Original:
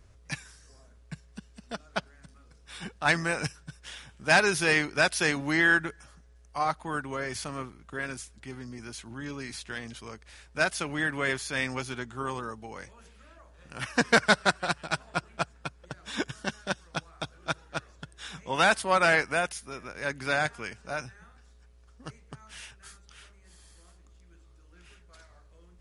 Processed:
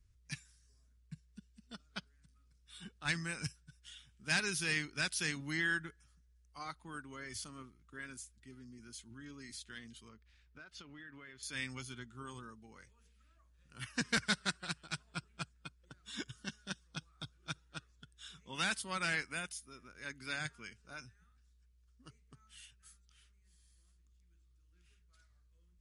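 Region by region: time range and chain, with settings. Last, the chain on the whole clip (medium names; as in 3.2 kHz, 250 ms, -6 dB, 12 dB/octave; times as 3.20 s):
10.09–11.43 s: low-pass 3.7 kHz + compression 5:1, threshold -36 dBFS
whole clip: spectral noise reduction 8 dB; amplifier tone stack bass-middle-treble 6-0-2; trim +8.5 dB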